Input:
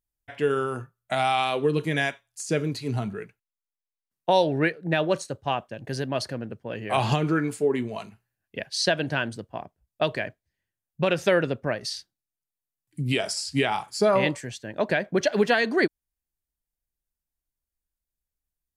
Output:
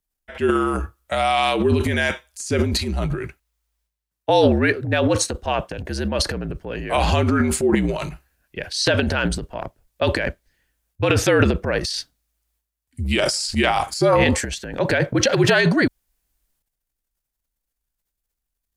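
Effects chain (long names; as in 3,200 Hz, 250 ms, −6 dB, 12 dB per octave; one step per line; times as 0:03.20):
frequency shifter −54 Hz
transient designer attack −1 dB, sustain +12 dB
level +4 dB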